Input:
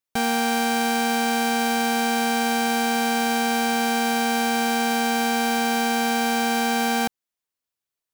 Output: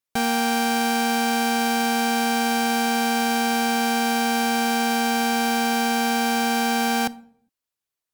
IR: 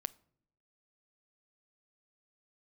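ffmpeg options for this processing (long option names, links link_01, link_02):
-filter_complex "[1:a]atrim=start_sample=2205,afade=type=out:start_time=0.42:duration=0.01,atrim=end_sample=18963,asetrate=39249,aresample=44100[link_01];[0:a][link_01]afir=irnorm=-1:irlink=0,volume=1.5dB"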